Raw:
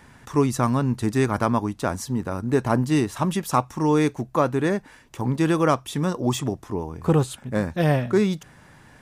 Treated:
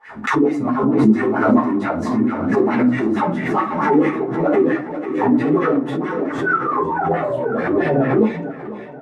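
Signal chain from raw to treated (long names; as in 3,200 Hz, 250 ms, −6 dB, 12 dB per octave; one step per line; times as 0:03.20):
noise gate −47 dBFS, range −26 dB
leveller curve on the samples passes 3
sound drawn into the spectrogram fall, 0:06.40–0:07.87, 300–1,600 Hz −17 dBFS
LFO wah 4.5 Hz 230–2,100 Hz, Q 5.9
on a send: repeating echo 494 ms, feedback 59%, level −12 dB
on the sum: rectangular room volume 160 cubic metres, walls furnished, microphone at 4 metres
multi-voice chorus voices 4, 1.4 Hz, delay 13 ms, depth 3 ms
background raised ahead of every attack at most 47 dB per second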